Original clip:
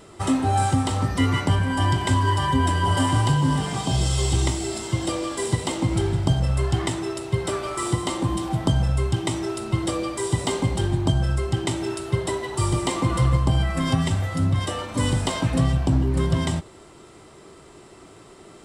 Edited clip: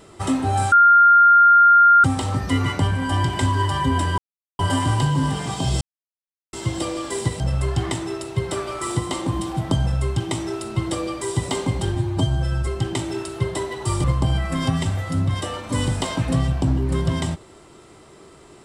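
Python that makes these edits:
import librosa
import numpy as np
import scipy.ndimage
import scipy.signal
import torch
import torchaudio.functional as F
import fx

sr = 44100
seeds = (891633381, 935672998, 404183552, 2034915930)

y = fx.edit(x, sr, fx.insert_tone(at_s=0.72, length_s=1.32, hz=1400.0, db=-8.5),
    fx.insert_silence(at_s=2.86, length_s=0.41),
    fx.silence(start_s=4.08, length_s=0.72),
    fx.cut(start_s=5.67, length_s=0.69),
    fx.stretch_span(start_s=10.91, length_s=0.48, factor=1.5),
    fx.cut(start_s=12.76, length_s=0.53), tone=tone)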